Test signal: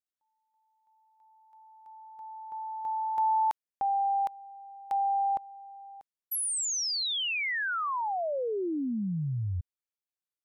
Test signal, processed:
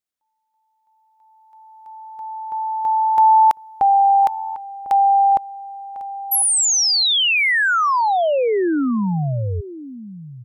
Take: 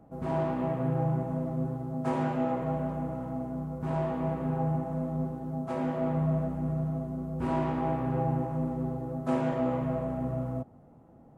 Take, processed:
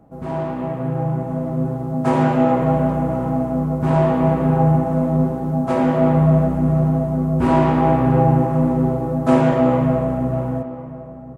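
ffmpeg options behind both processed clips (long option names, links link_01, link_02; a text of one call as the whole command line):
ffmpeg -i in.wav -filter_complex "[0:a]dynaudnorm=framelen=390:gausssize=9:maxgain=9dB,asplit=2[link_01][link_02];[link_02]adelay=1050,volume=-15dB,highshelf=frequency=4000:gain=-23.6[link_03];[link_01][link_03]amix=inputs=2:normalize=0,volume=5dB" out.wav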